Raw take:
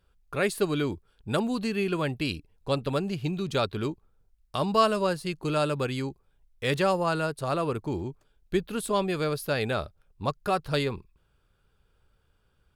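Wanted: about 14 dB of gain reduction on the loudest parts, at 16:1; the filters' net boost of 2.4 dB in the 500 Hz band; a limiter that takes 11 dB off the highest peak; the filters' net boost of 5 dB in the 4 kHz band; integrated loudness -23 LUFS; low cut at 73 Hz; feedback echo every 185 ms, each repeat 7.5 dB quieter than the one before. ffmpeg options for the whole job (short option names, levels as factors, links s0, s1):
-af "highpass=73,equalizer=f=500:t=o:g=3,equalizer=f=4000:t=o:g=6,acompressor=threshold=0.0398:ratio=16,alimiter=limit=0.0668:level=0:latency=1,aecho=1:1:185|370|555|740|925:0.422|0.177|0.0744|0.0312|0.0131,volume=3.76"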